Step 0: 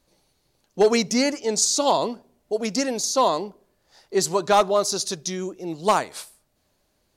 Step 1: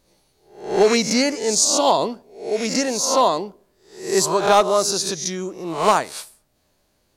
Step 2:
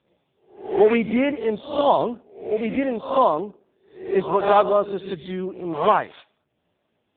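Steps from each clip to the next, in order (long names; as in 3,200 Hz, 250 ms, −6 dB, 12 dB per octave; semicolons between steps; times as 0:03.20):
peak hold with a rise ahead of every peak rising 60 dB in 0.48 s; level +1.5 dB
AMR narrowband 5.15 kbit/s 8,000 Hz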